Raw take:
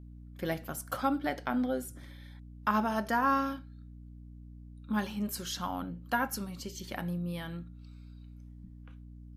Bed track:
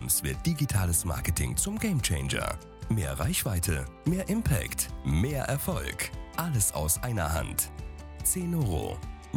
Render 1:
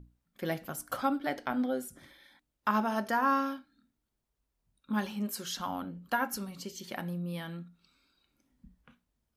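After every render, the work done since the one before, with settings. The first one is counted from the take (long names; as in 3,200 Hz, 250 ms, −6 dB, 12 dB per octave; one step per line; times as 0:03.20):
mains-hum notches 60/120/180/240/300 Hz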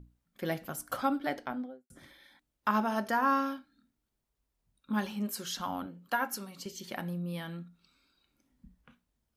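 0:01.27–0:01.90: fade out and dull
0:05.86–0:06.66: high-pass filter 300 Hz 6 dB per octave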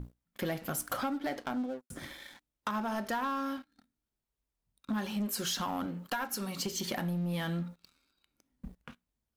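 downward compressor 8 to 1, threshold −40 dBFS, peak gain reduction 17 dB
leveller curve on the samples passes 3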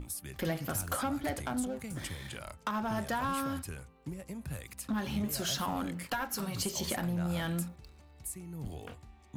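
mix in bed track −14 dB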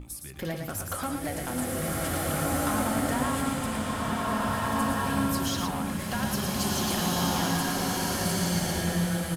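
single-tap delay 113 ms −5.5 dB
slow-attack reverb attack 1,810 ms, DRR −6 dB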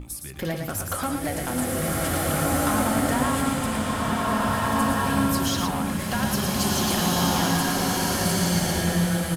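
level +4.5 dB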